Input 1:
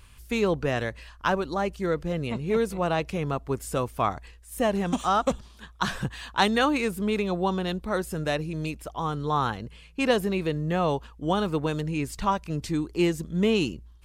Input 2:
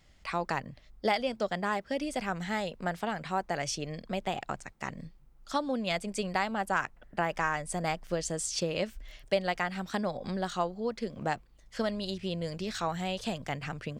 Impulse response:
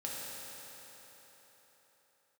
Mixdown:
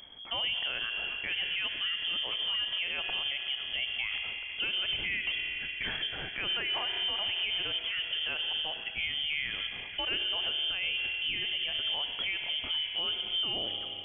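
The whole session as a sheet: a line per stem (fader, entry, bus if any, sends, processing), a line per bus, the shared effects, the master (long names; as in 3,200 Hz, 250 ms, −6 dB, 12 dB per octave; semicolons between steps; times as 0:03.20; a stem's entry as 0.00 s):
−3.0 dB, 0.00 s, send −9.5 dB, no processing
−9.5 dB, 0.00 s, no send, downward compressor, threshold −37 dBFS, peak gain reduction 14 dB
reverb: on, RT60 4.3 s, pre-delay 3 ms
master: voice inversion scrambler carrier 3,300 Hz; low-shelf EQ 290 Hz +6.5 dB; brickwall limiter −24 dBFS, peak gain reduction 15 dB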